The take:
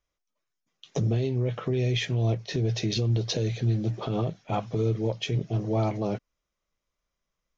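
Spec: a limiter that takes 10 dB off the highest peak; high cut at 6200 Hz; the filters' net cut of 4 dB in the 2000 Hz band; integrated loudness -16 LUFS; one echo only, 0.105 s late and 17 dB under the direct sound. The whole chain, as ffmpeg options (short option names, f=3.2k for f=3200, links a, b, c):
-af "lowpass=6.2k,equalizer=f=2k:t=o:g=-5,alimiter=level_in=3dB:limit=-24dB:level=0:latency=1,volume=-3dB,aecho=1:1:105:0.141,volume=19dB"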